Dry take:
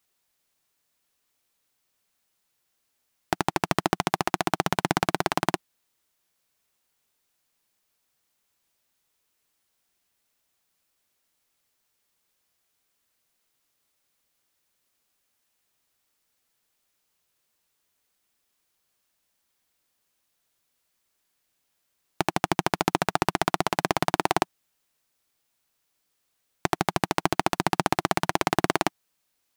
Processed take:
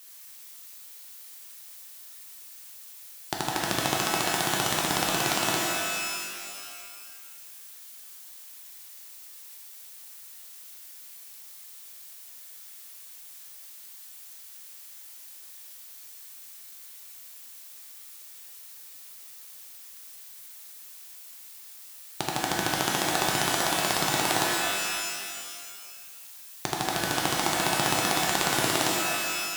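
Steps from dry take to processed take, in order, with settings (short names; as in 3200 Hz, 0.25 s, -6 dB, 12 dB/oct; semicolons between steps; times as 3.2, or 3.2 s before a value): band shelf 6300 Hz +8 dB 2.3 oct; added noise blue -43 dBFS; shimmer reverb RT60 2 s, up +12 st, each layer -2 dB, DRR -1.5 dB; gain -7.5 dB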